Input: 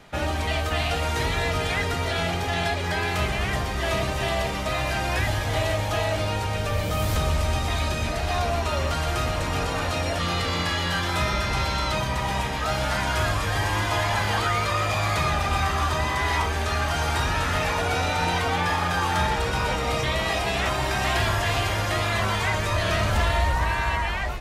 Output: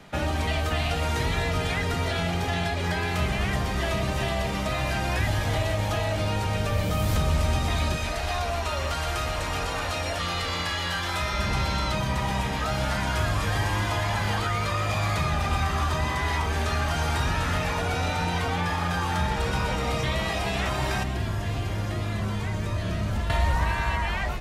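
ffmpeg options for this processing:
ffmpeg -i in.wav -filter_complex "[0:a]asettb=1/sr,asplit=3[link_01][link_02][link_03];[link_01]atrim=end=7.964[link_04];[link_02]atrim=start=7.96:end=11.39,asetpts=PTS-STARTPTS,afade=type=in:duration=0.004:curve=qsin,afade=type=out:start_time=3.426:duration=0.004:curve=qsin,equalizer=frequency=180:width=0.61:gain=-10[link_05];[link_03]atrim=start=11.386[link_06];[link_04][link_05]acrossfade=duration=0.004:curve1=hsin:curve2=qsin[link_07];[link_07][link_06]acrossfade=duration=0.004:curve1=qsin:curve2=hsin,asettb=1/sr,asplit=3[link_08][link_09][link_10];[link_08]atrim=end=21.034[link_11];[link_09]atrim=start=21.03:end=23.3,asetpts=PTS-STARTPTS,afade=type=in:duration=0.004:curve=qsin,afade=type=out:start_time=2.266:duration=0.004:curve=qsin,acrossover=split=410|4400[link_12][link_13][link_14];[link_12]acompressor=threshold=-26dB:ratio=4[link_15];[link_13]acompressor=threshold=-39dB:ratio=4[link_16];[link_14]acompressor=threshold=-51dB:ratio=4[link_17];[link_15][link_16][link_17]amix=inputs=3:normalize=0[link_18];[link_10]atrim=start=23.296[link_19];[link_11][link_18]acrossfade=duration=0.004:curve1=hsin:curve2=qsin[link_20];[link_20][link_19]acrossfade=duration=0.004:curve1=qsin:curve2=hsin,equalizer=frequency=190:width_type=o:width=1:gain=5,acrossover=split=130[link_21][link_22];[link_22]acompressor=threshold=-25dB:ratio=6[link_23];[link_21][link_23]amix=inputs=2:normalize=0" out.wav

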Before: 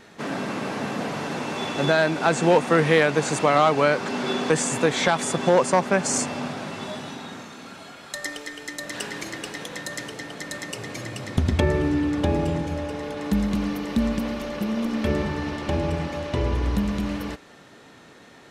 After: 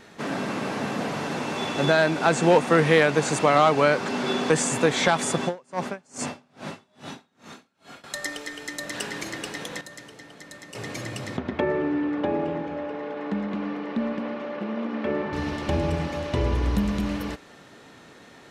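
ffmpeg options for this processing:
ffmpeg -i in.wav -filter_complex "[0:a]asettb=1/sr,asplit=3[link_01][link_02][link_03];[link_01]atrim=end=5.434[link_04];[link_02]atrim=start=5.43:end=8.04,asetpts=PTS-STARTPTS,afade=type=in:duration=0.004:curve=qsin,afade=type=out:start_time=2.606:duration=0.004:curve=qsin,aeval=exprs='val(0)*pow(10,-35*(0.5-0.5*cos(2*PI*2.4*n/s))/20)':channel_layout=same[link_05];[link_03]atrim=start=8.036[link_06];[link_04][link_05]acrossfade=duration=0.004:curve1=hsin:curve2=qsin[link_07];[link_07][link_06]acrossfade=duration=0.004:curve1=qsin:curve2=hsin,asettb=1/sr,asplit=3[link_08][link_09][link_10];[link_08]atrim=end=11.374[link_11];[link_09]atrim=start=11.37:end=15.33,asetpts=PTS-STARTPTS,afade=type=in:duration=0.004:curve=qsin,afade=type=out:start_time=3.956:duration=0.004:curve=qsin,highpass=270,lowpass=2100[link_12];[link_10]atrim=start=15.326[link_13];[link_11][link_12]acrossfade=duration=0.004:curve1=hsin:curve2=qsin[link_14];[link_14][link_13]acrossfade=duration=0.004:curve1=qsin:curve2=hsin,asplit=3[link_15][link_16][link_17];[link_15]atrim=end=9.812[link_18];[link_16]atrim=start=9.808:end=10.752,asetpts=PTS-STARTPTS,volume=-10dB[link_19];[link_17]atrim=start=10.748[link_20];[link_18][link_19]acrossfade=duration=0.004:curve1=hsin:curve2=hsin[link_21];[link_21][link_20]acrossfade=duration=0.004:curve1=hsin:curve2=hsin" out.wav

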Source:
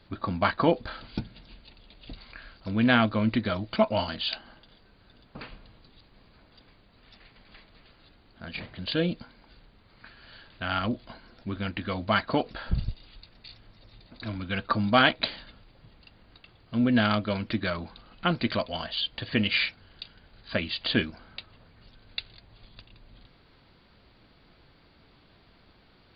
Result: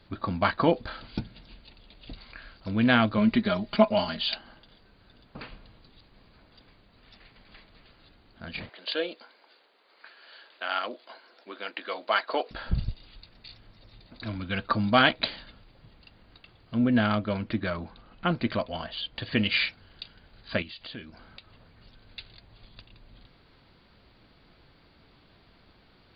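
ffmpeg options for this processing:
ffmpeg -i in.wav -filter_complex "[0:a]asettb=1/sr,asplit=3[link_01][link_02][link_03];[link_01]atrim=end=3.174[link_04];[link_02]atrim=start=3.17:end=4.35,asetpts=PTS-STARTPTS,afade=type=in:duration=0.004:curve=qsin,afade=type=out:start_time=1.176:duration=0.004:curve=qsin,aecho=1:1:4.9:0.65,atrim=end_sample=52038[link_05];[link_03]atrim=start=4.346[link_06];[link_04][link_05]acrossfade=duration=0.004:curve1=hsin:curve2=qsin[link_07];[link_07][link_06]acrossfade=duration=0.004:curve1=qsin:curve2=hsin,asettb=1/sr,asplit=3[link_08][link_09][link_10];[link_08]atrim=end=8.694[link_11];[link_09]atrim=start=8.69:end=12.51,asetpts=PTS-STARTPTS,afade=type=in:duration=0.004:curve=qsin,afade=type=out:start_time=3.816:duration=0.004:curve=qsin,highpass=frequency=390:width=0.5412,highpass=frequency=390:width=1.3066[link_12];[link_10]atrim=start=12.506[link_13];[link_11][link_12]acrossfade=duration=0.004:curve1=hsin:curve2=qsin[link_14];[link_14][link_13]acrossfade=duration=0.004:curve1=qsin:curve2=hsin,asettb=1/sr,asplit=3[link_15][link_16][link_17];[link_15]atrim=end=16.744[link_18];[link_16]atrim=start=16.74:end=19.16,asetpts=PTS-STARTPTS,afade=type=in:duration=0.004:curve=qsin,afade=type=out:start_time=2.416:duration=0.004:curve=qsin,lowpass=frequency=2200:poles=1[link_19];[link_17]atrim=start=19.156[link_20];[link_18][link_19]acrossfade=duration=0.004:curve1=hsin:curve2=qsin[link_21];[link_21][link_20]acrossfade=duration=0.004:curve1=qsin:curve2=hsin,asettb=1/sr,asplit=3[link_22][link_23][link_24];[link_22]atrim=end=20.624[link_25];[link_23]atrim=start=20.62:end=22.19,asetpts=PTS-STARTPTS,afade=type=in:duration=0.004:curve=qsin,afade=type=out:start_time=1.566:duration=0.004:curve=qsin,acompressor=threshold=-45dB:ratio=2.5:attack=3.2:release=140:knee=1:detection=peak[link_26];[link_24]atrim=start=22.186[link_27];[link_25][link_26]acrossfade=duration=0.004:curve1=hsin:curve2=qsin[link_28];[link_28][link_27]acrossfade=duration=0.004:curve1=qsin:curve2=hsin" out.wav

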